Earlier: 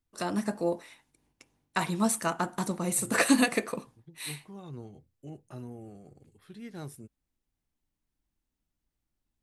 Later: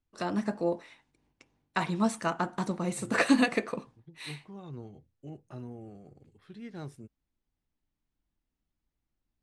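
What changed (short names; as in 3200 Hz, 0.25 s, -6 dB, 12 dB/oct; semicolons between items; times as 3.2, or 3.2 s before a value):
first voice: add high shelf 10000 Hz -3.5 dB; master: add air absorption 82 m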